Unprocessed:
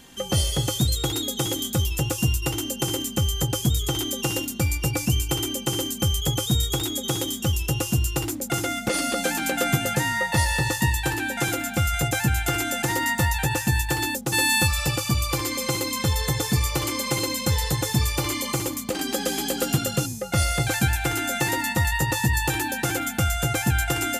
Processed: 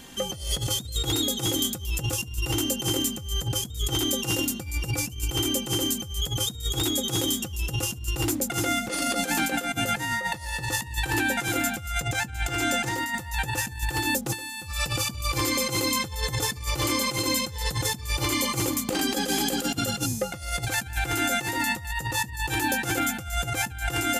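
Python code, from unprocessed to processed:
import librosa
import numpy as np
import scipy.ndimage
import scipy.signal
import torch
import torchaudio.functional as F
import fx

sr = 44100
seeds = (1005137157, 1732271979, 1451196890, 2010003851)

y = fx.peak_eq(x, sr, hz=12000.0, db=-10.0, octaves=0.48, at=(11.99, 12.98))
y = fx.over_compress(y, sr, threshold_db=-27.0, ratio=-0.5)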